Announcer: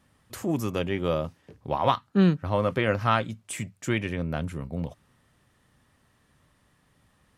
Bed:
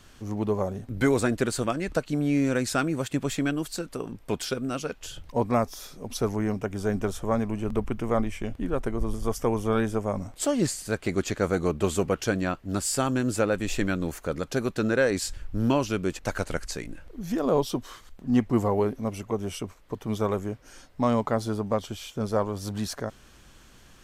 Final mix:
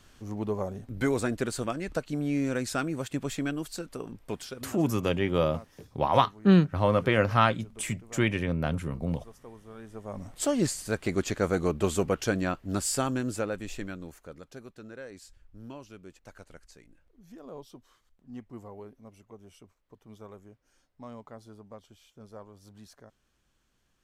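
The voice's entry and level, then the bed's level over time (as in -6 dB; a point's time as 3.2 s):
4.30 s, +1.0 dB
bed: 4.25 s -4.5 dB
5.03 s -22.5 dB
9.75 s -22.5 dB
10.36 s -1.5 dB
12.9 s -1.5 dB
14.81 s -20.5 dB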